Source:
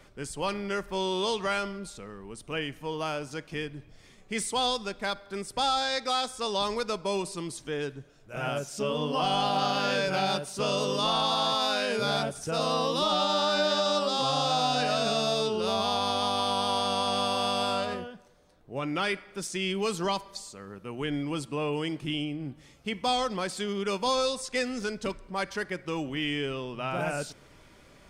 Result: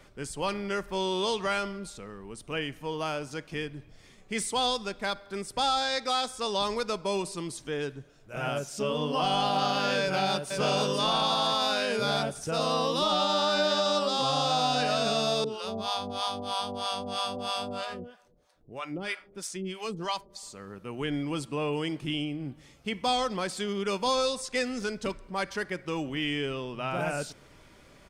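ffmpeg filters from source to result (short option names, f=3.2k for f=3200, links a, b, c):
-filter_complex "[0:a]asplit=2[a][b];[b]afade=t=in:st=10.01:d=0.01,afade=t=out:st=10.49:d=0.01,aecho=0:1:490|980|1470|1960|2450|2940:0.562341|0.253054|0.113874|0.0512434|0.0230595|0.0103768[c];[a][c]amix=inputs=2:normalize=0,asettb=1/sr,asplit=3[d][e][f];[d]atrim=end=15.444[g];[e]atrim=start=15.44:end=20.43,asetpts=PTS-STARTPTS,afade=t=in:d=0.004:c=qsin,afade=t=out:st=4.986:d=0.004:c=qsin,acrossover=split=580[h][i];[h]aeval=exprs='val(0)*(1-1/2+1/2*cos(2*PI*3.1*n/s))':c=same[j];[i]aeval=exprs='val(0)*(1-1/2-1/2*cos(2*PI*3.1*n/s))':c=same[k];[j][k]amix=inputs=2:normalize=0[l];[f]atrim=start=20.426[m];[g][l]acrossfade=d=0.004:c1=hsin:c2=qsin[n];[n][m]acrossfade=d=0.004:c1=qsin:c2=hsin"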